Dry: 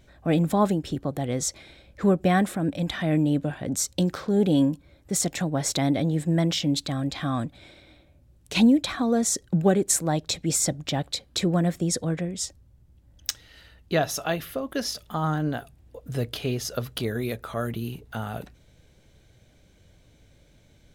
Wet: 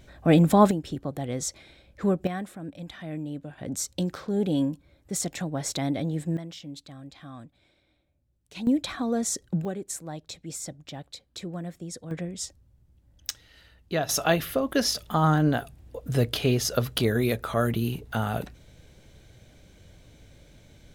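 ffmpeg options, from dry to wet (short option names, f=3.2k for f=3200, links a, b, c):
-af "asetnsamples=n=441:p=0,asendcmd='0.71 volume volume -3.5dB;2.27 volume volume -12dB;3.58 volume volume -4.5dB;6.37 volume volume -16dB;8.67 volume volume -4dB;9.65 volume volume -12.5dB;12.11 volume volume -4dB;14.09 volume volume 4.5dB',volume=4dB"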